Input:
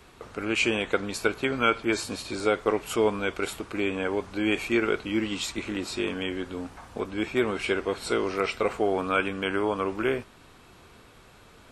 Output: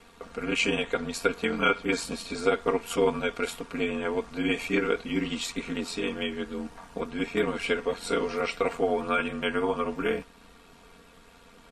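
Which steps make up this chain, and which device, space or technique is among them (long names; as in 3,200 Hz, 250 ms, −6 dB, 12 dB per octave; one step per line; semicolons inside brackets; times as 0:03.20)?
ring-modulated robot voice (ring modulation 44 Hz; comb filter 4.3 ms, depth 76%)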